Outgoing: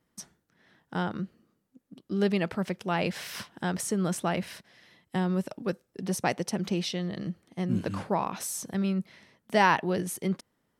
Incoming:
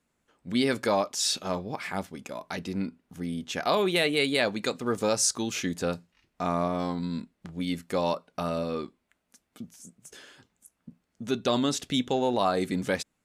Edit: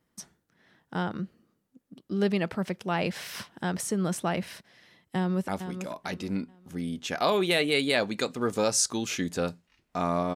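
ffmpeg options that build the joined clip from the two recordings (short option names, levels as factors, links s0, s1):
-filter_complex "[0:a]apad=whole_dur=10.35,atrim=end=10.35,atrim=end=5.482[s0];[1:a]atrim=start=1.928:end=6.8[s1];[s0][s1]acrossfade=d=0.004:c1=hsin:c2=hsin,asplit=2[s2][s3];[s3]afade=t=in:st=5.16:d=0.01,afade=t=out:st=5.48:d=0.01,aecho=0:1:440|880|1320:0.354813|0.106444|0.0319332[s4];[s2][s4]amix=inputs=2:normalize=0"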